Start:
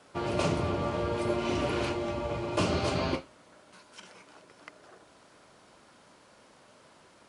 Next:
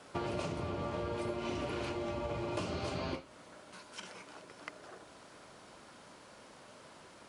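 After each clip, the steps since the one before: compression 16:1, threshold -36 dBFS, peak gain reduction 14 dB; trim +2.5 dB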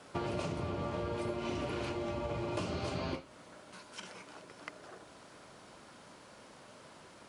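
peaking EQ 140 Hz +2 dB 1.7 oct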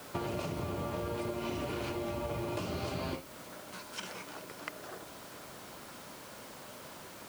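compression 3:1, threshold -40 dBFS, peak gain reduction 7 dB; added noise white -61 dBFS; trim +5.5 dB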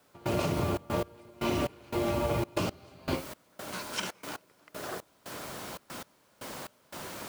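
trance gate "..xxxx.x...xx" 117 bpm -24 dB; trim +7.5 dB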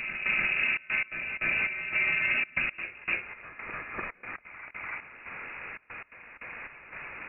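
reverse echo 295 ms -7.5 dB; frequency inversion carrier 2.7 kHz; trim +1 dB

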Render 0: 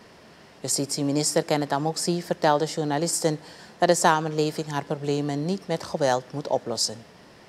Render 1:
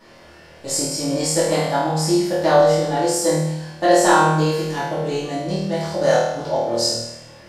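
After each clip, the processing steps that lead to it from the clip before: on a send: flutter echo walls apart 4.4 m, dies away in 0.82 s; on the sum: simulated room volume 120 m³, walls furnished, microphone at 2.5 m; trim -5.5 dB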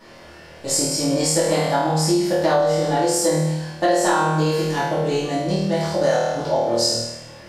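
compression, threshold -17 dBFS, peak gain reduction 8 dB; trim +2.5 dB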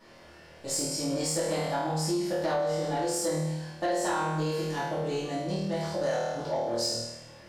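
saturation -11 dBFS, distortion -21 dB; trim -9 dB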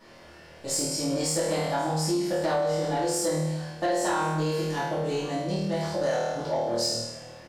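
delay 1084 ms -21 dB; trim +2.5 dB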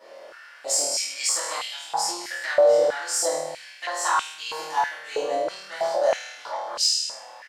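dynamic bell 6.6 kHz, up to +7 dB, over -44 dBFS, Q 1.2; step-sequenced high-pass 3.1 Hz 540–2900 Hz

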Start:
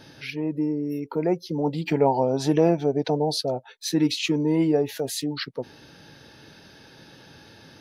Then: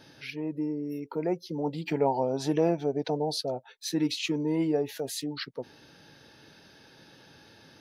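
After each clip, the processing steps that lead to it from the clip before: bass shelf 150 Hz -4.5 dB; trim -5 dB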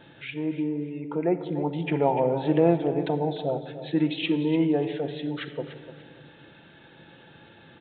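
feedback delay 295 ms, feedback 28%, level -13 dB; simulated room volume 3400 m³, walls mixed, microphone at 0.8 m; resampled via 8 kHz; trim +3 dB

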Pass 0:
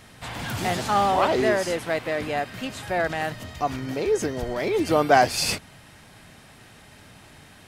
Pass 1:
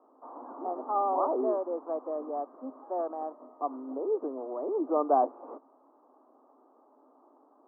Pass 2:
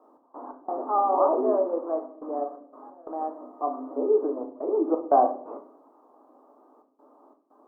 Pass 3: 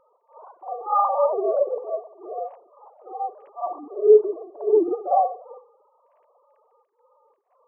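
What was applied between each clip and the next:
Chebyshev band-pass 260–1200 Hz, order 5; trim -6 dB
trance gate "x.x.xxxxxxxx.x" 88 bpm -24 dB; simulated room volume 70 m³, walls mixed, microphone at 0.48 m; trim +3.5 dB
formants replaced by sine waves; reverse echo 54 ms -9.5 dB; trim +2.5 dB

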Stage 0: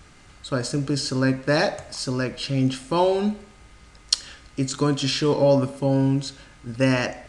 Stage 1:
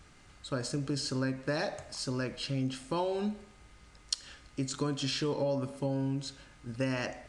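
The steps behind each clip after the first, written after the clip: compression 4:1, threshold -21 dBFS, peak gain reduction 7 dB; trim -7.5 dB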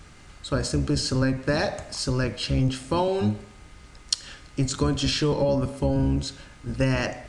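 octave divider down 1 oct, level -2 dB; trim +8 dB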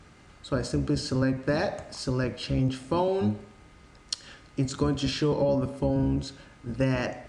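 high-pass 250 Hz 6 dB/octave; tilt EQ -2 dB/octave; trim -2.5 dB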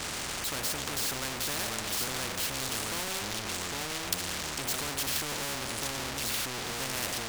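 ever faster or slower copies 253 ms, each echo -3 st, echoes 3, each echo -6 dB; power-law waveshaper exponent 0.5; spectrum-flattening compressor 4:1

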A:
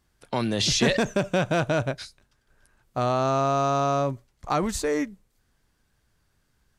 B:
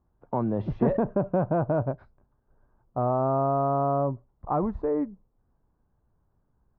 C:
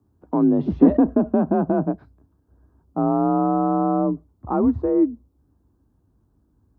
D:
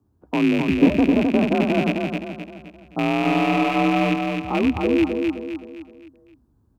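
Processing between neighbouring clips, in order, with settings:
Chebyshev low-pass 1 kHz, order 3
ten-band graphic EQ 125 Hz -5 dB, 250 Hz +9 dB, 500 Hz -6 dB, 1 kHz -4 dB, 2 kHz -7 dB; frequency shift +41 Hz; trim +6.5 dB
rattle on loud lows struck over -25 dBFS, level -15 dBFS; feedback delay 260 ms, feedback 43%, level -4 dB; trim -1.5 dB

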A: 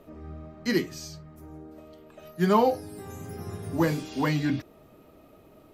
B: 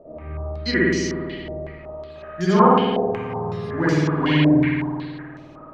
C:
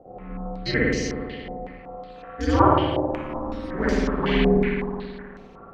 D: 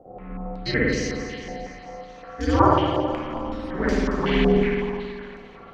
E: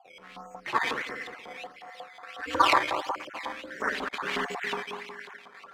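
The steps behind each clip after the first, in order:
spring tank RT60 1.9 s, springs 53 ms, chirp 40 ms, DRR -8.5 dB; dynamic bell 890 Hz, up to -6 dB, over -32 dBFS, Q 0.95; step-sequenced low-pass 5.4 Hz 640–5900 Hz; trim -1 dB
ring modulator 110 Hz
thinning echo 224 ms, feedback 62%, high-pass 560 Hz, level -11 dB
random holes in the spectrogram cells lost 21%; decimation with a swept rate 11×, swing 100% 1.5 Hz; LFO band-pass saw up 5.5 Hz 940–3100 Hz; trim +5.5 dB

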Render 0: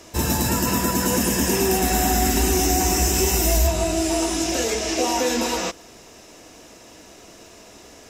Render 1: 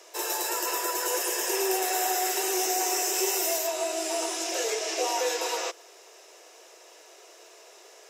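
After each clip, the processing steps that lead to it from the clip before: steep high-pass 360 Hz 72 dB/octave; trim -5 dB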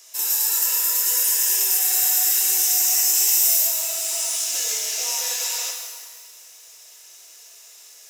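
differentiator; pitch-shifted reverb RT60 1.5 s, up +12 st, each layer -8 dB, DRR 0.5 dB; trim +7 dB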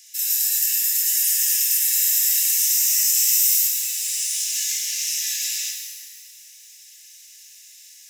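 steep high-pass 1.7 kHz 72 dB/octave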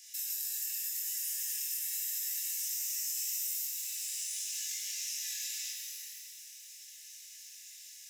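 chorus 0.42 Hz, delay 19.5 ms, depth 6 ms; compression 2.5:1, threshold -38 dBFS, peak gain reduction 13 dB; trim -1.5 dB

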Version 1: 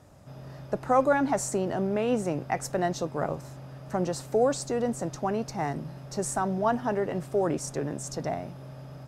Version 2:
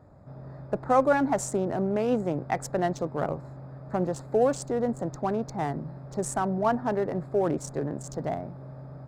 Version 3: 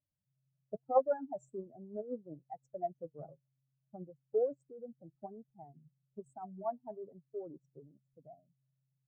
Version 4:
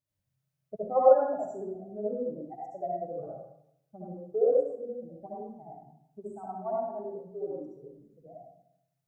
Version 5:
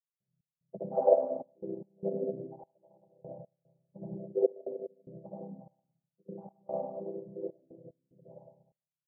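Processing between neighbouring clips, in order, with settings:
local Wiener filter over 15 samples; trim +1 dB
spectral contrast enhancement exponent 2.7; flange 1.1 Hz, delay 3.4 ms, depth 3.5 ms, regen +73%; upward expansion 2.5:1, over -44 dBFS
reverberation RT60 0.80 s, pre-delay 57 ms, DRR -6 dB
vocoder on a held chord major triad, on C3; trance gate ".x.xxxx.x.xxx.." 74 bpm -24 dB; four-pole ladder low-pass 800 Hz, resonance 30%; trim +2 dB

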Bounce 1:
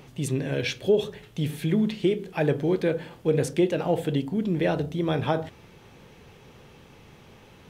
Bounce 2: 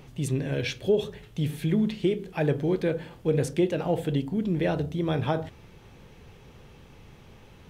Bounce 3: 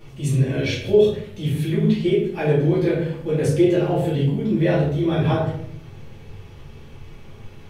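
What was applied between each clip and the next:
bass shelf 80 Hz +12 dB; trim -2.5 dB
flange 0.52 Hz, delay 6.3 ms, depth 7.9 ms, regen -57%; simulated room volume 110 m³, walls mixed, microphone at 2.4 m

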